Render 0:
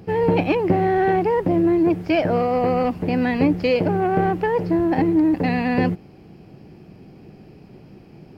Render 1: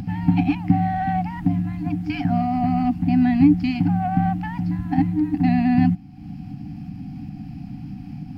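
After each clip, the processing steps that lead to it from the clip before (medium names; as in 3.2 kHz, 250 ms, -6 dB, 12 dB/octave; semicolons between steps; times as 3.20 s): FFT band-reject 310–710 Hz; resonant low shelf 750 Hz +8.5 dB, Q 3; upward compressor, threshold -19 dBFS; trim -5 dB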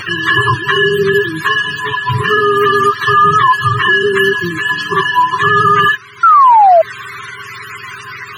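spectrum inverted on a logarithmic axis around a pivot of 550 Hz; painted sound fall, 6.23–6.82 s, 630–1400 Hz -13 dBFS; loudness maximiser +13.5 dB; trim -1 dB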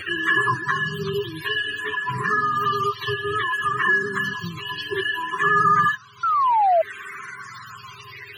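barber-pole phaser -0.59 Hz; trim -7 dB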